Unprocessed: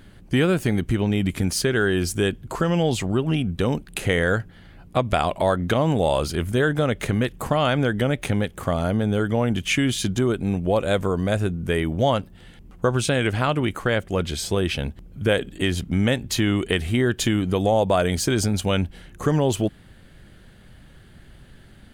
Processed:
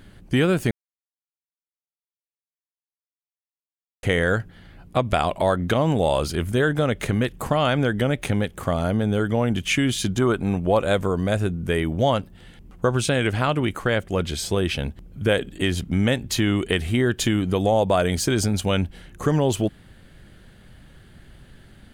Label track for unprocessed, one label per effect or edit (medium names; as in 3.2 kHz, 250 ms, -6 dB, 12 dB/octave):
0.710000	4.030000	mute
10.200000	10.930000	peaking EQ 1.1 kHz +9.5 dB -> +3 dB 1.4 oct